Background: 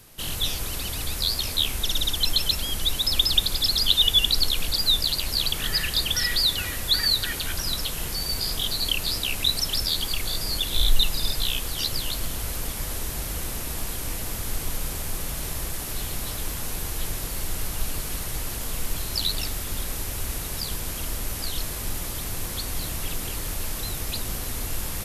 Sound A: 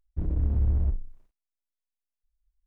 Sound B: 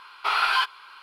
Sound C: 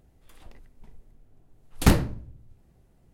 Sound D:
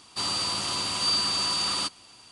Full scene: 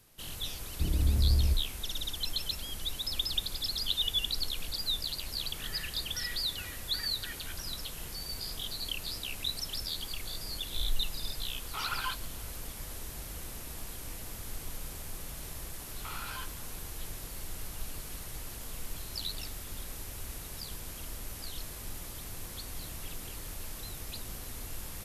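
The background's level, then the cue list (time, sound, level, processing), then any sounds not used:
background −11.5 dB
0:00.63: mix in A −1.5 dB
0:11.49: mix in B −15.5 dB + phase shifter 2 Hz, delay 2.9 ms, feedback 42%
0:15.80: mix in B −14.5 dB + downward compressor 4 to 1, threshold −25 dBFS
not used: C, D

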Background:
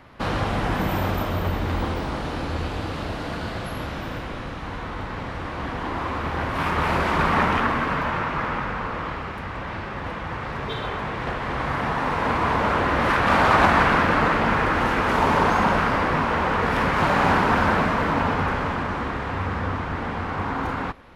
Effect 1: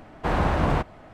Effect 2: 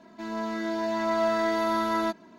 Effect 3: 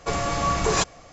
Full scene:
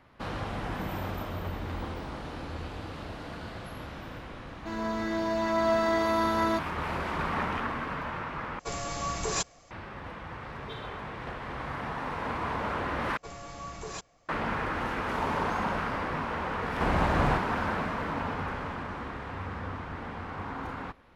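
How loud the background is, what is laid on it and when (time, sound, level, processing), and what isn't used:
background −10.5 dB
0:04.47: mix in 2 −0.5 dB
0:08.59: overwrite with 3 −10 dB + high-shelf EQ 5,500 Hz +8.5 dB
0:13.17: overwrite with 3 −17.5 dB
0:16.56: mix in 1 −4.5 dB

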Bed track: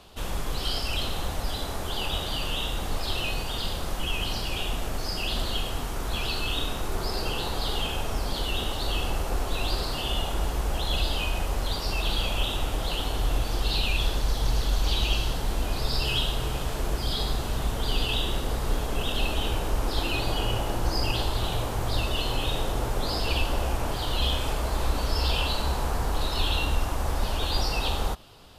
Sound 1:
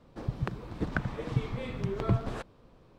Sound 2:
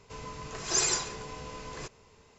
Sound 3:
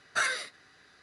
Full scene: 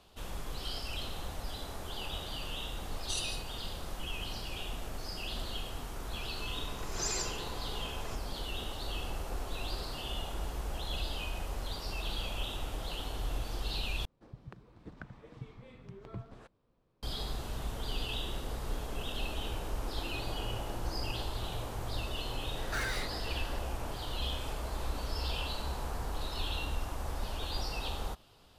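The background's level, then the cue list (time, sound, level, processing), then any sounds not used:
bed track −10 dB
0:02.93: mix in 3 −1.5 dB + linear-phase brick-wall high-pass 2,700 Hz
0:06.28: mix in 2 −7 dB + brickwall limiter −18 dBFS
0:14.05: overwrite with 1 −16.5 dB
0:22.57: mix in 3 −13.5 dB + mid-hump overdrive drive 29 dB, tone 4,800 Hz, clips at −16.5 dBFS

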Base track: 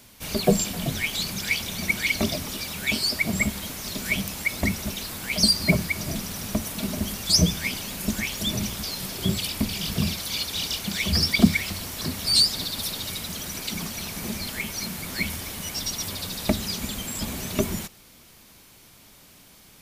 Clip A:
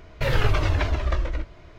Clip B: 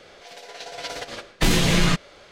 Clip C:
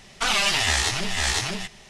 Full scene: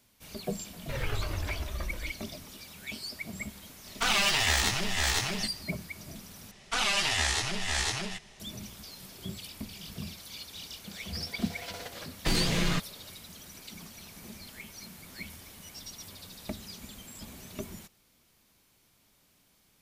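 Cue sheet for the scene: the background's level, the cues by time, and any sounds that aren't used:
base track −15 dB
0:00.68: mix in A −12 dB
0:03.80: mix in C −4 dB, fades 0.10 s + stylus tracing distortion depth 0.034 ms
0:06.51: overwrite with C −6 dB
0:10.84: mix in B −9 dB

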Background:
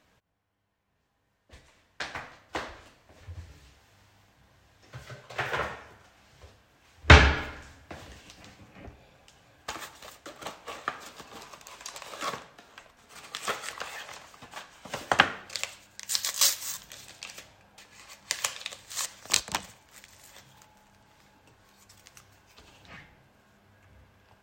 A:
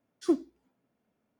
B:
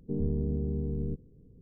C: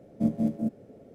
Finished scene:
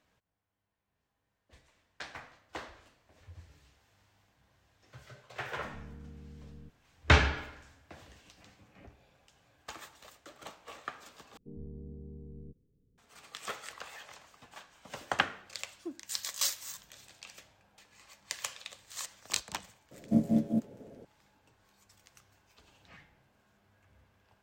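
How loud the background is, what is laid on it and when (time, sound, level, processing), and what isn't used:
background −8 dB
0:05.54: mix in B −18 dB + notch filter 400 Hz, Q 7.3
0:11.37: overwrite with B −15.5 dB
0:15.57: mix in A −16.5 dB
0:19.91: mix in C −0.5 dB

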